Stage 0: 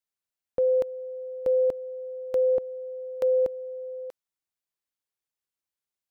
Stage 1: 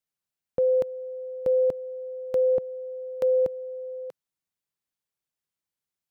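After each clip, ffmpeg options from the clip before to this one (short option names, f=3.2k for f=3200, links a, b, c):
-af "equalizer=f=150:w=1.1:g=7.5"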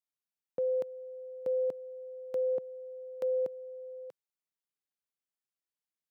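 -af "highpass=170,volume=-8.5dB"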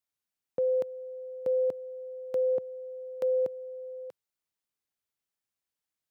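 -af "equalizer=f=94:t=o:w=0.57:g=6,volume=3.5dB"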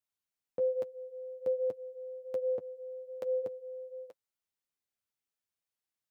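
-af "flanger=delay=8.4:depth=3.2:regen=-26:speed=1.2:shape=sinusoidal"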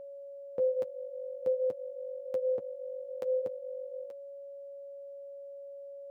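-af "aeval=exprs='val(0)+0.00631*sin(2*PI*560*n/s)':c=same,volume=1.5dB"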